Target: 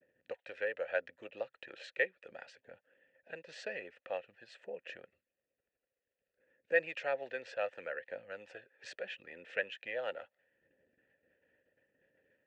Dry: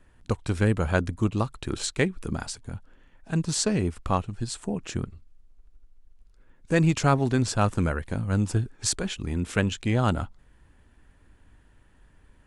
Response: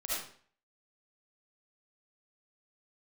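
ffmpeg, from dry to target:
-filter_complex "[0:a]aemphasis=mode=reproduction:type=riaa,agate=range=-33dB:threshold=-32dB:ratio=3:detection=peak,acrossover=split=750|4400[link_01][link_02][link_03];[link_01]acompressor=threshold=-41dB:ratio=12[link_04];[link_04][link_02][link_03]amix=inputs=3:normalize=0,asplit=3[link_05][link_06][link_07];[link_05]bandpass=frequency=530:width_type=q:width=8,volume=0dB[link_08];[link_06]bandpass=frequency=1840:width_type=q:width=8,volume=-6dB[link_09];[link_07]bandpass=frequency=2480:width_type=q:width=8,volume=-9dB[link_10];[link_08][link_09][link_10]amix=inputs=3:normalize=0,aphaser=in_gain=1:out_gain=1:delay=2.3:decay=0.21:speed=0.74:type=triangular,highpass=190,lowpass=7700,volume=8dB"

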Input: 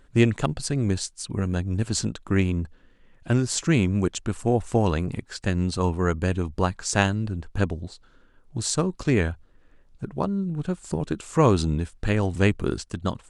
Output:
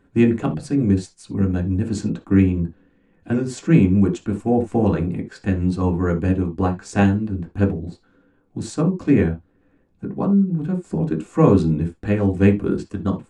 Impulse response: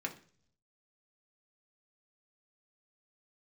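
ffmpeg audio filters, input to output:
-filter_complex "[0:a]tiltshelf=frequency=970:gain=6.5[link_01];[1:a]atrim=start_sample=2205,atrim=end_sample=3969[link_02];[link_01][link_02]afir=irnorm=-1:irlink=0,volume=-1dB"

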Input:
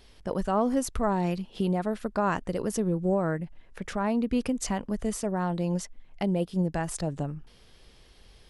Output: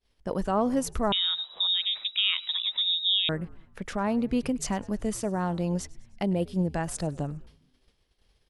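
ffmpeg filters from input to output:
ffmpeg -i in.wav -filter_complex "[0:a]agate=range=-33dB:threshold=-43dB:ratio=3:detection=peak,asplit=5[link_01][link_02][link_03][link_04][link_05];[link_02]adelay=102,afreqshift=-100,volume=-22dB[link_06];[link_03]adelay=204,afreqshift=-200,volume=-27.7dB[link_07];[link_04]adelay=306,afreqshift=-300,volume=-33.4dB[link_08];[link_05]adelay=408,afreqshift=-400,volume=-39dB[link_09];[link_01][link_06][link_07][link_08][link_09]amix=inputs=5:normalize=0,asettb=1/sr,asplit=3[link_10][link_11][link_12];[link_10]atrim=end=1.124[link_13];[link_11]atrim=start=1.12:end=3.29,asetpts=PTS-STARTPTS,afade=type=in:duration=0.004:curve=qsin,afade=type=out:start_time=2.166:duration=0.004:curve=qsin,lowpass=frequency=3300:width_type=q:width=0.5098,lowpass=frequency=3300:width_type=q:width=0.6013,lowpass=frequency=3300:width_type=q:width=0.9,lowpass=frequency=3300:width_type=q:width=2.563,afreqshift=-3900[link_14];[link_12]atrim=start=3.286[link_15];[link_13][link_14]acrossfade=duration=0.004:curve1=hsin:curve2=qsin[link_16];[link_16][link_15]acrossfade=duration=0.004:curve1=qsin:curve2=hsin" out.wav

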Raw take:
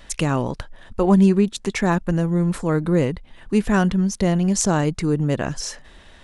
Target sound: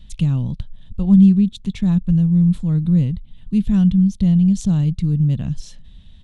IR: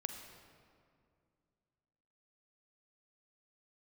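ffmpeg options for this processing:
-af "firequalizer=gain_entry='entry(180,0);entry(350,-23);entry(1600,-27);entry(3500,-8);entry(5100,-20)':delay=0.05:min_phase=1,volume=6.5dB"

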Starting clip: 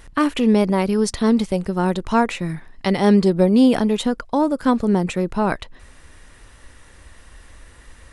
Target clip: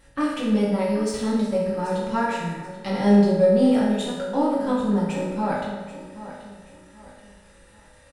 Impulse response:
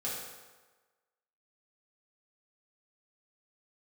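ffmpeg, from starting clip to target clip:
-filter_complex "[0:a]aeval=exprs='if(lt(val(0),0),0.708*val(0),val(0))':channel_layout=same,aecho=1:1:783|1566|2349:0.2|0.0678|0.0231[link_01];[1:a]atrim=start_sample=2205,asetrate=48510,aresample=44100[link_02];[link_01][link_02]afir=irnorm=-1:irlink=0,volume=-6dB"

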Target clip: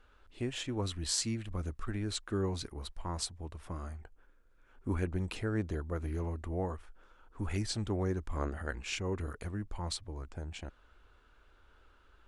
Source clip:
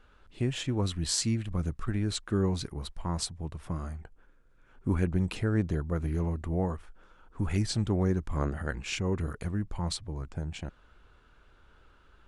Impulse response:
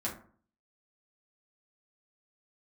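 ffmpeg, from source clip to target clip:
-af "equalizer=frequency=150:width=1.8:gain=-10.5,volume=-3dB"

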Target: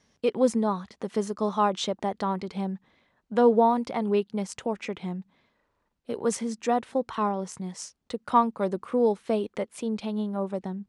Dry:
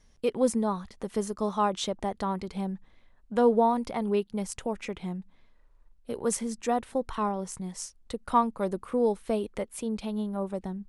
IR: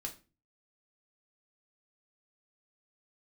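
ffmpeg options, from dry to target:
-af "highpass=130,lowpass=6800,volume=2.5dB"

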